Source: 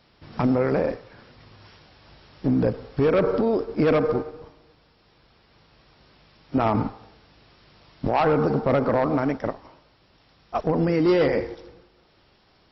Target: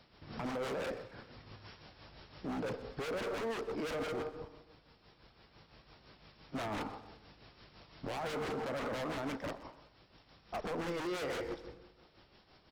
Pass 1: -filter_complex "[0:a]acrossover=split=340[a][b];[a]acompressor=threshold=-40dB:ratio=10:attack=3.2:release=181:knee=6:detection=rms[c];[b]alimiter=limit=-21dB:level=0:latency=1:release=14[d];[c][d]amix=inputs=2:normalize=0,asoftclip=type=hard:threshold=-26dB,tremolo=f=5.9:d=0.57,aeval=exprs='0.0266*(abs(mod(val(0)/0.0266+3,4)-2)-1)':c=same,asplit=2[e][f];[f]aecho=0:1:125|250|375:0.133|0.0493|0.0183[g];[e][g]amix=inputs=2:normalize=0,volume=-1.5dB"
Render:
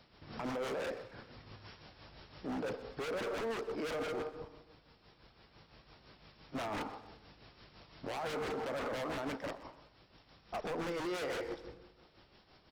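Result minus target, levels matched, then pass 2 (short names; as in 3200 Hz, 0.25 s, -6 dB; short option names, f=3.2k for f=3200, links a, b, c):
compressor: peak gain reduction +6.5 dB
-filter_complex "[0:a]acrossover=split=340[a][b];[a]acompressor=threshold=-32.5dB:ratio=10:attack=3.2:release=181:knee=6:detection=rms[c];[b]alimiter=limit=-21dB:level=0:latency=1:release=14[d];[c][d]amix=inputs=2:normalize=0,asoftclip=type=hard:threshold=-26dB,tremolo=f=5.9:d=0.57,aeval=exprs='0.0266*(abs(mod(val(0)/0.0266+3,4)-2)-1)':c=same,asplit=2[e][f];[f]aecho=0:1:125|250|375:0.133|0.0493|0.0183[g];[e][g]amix=inputs=2:normalize=0,volume=-1.5dB"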